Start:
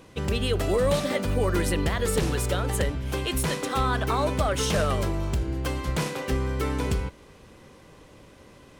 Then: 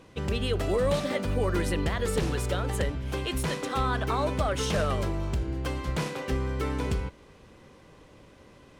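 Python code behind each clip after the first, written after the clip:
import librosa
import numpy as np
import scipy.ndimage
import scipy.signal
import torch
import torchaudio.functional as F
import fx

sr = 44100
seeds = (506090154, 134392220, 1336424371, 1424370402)

y = fx.high_shelf(x, sr, hz=8500.0, db=-8.0)
y = F.gain(torch.from_numpy(y), -2.5).numpy()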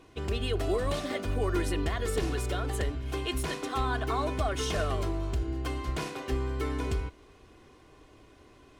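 y = x + 0.55 * np.pad(x, (int(2.8 * sr / 1000.0), 0))[:len(x)]
y = F.gain(torch.from_numpy(y), -3.5).numpy()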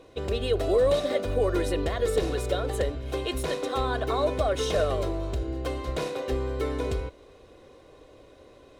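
y = fx.small_body(x, sr, hz=(530.0, 3800.0), ring_ms=30, db=15)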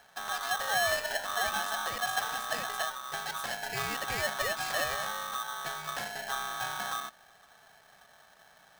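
y = x * np.sign(np.sin(2.0 * np.pi * 1200.0 * np.arange(len(x)) / sr))
y = F.gain(torch.from_numpy(y), -7.0).numpy()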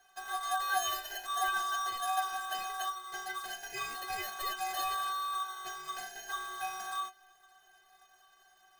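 y = fx.stiff_resonator(x, sr, f0_hz=370.0, decay_s=0.21, stiffness=0.008)
y = F.gain(torch.from_numpy(y), 8.5).numpy()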